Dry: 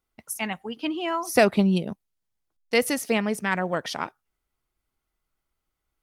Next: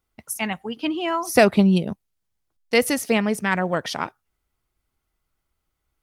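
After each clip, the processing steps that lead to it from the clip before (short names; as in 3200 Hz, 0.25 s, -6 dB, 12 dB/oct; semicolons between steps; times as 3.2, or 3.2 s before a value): bell 83 Hz +5 dB 1.6 oct; gain +3 dB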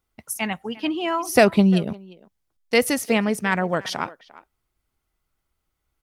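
speakerphone echo 0.35 s, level -19 dB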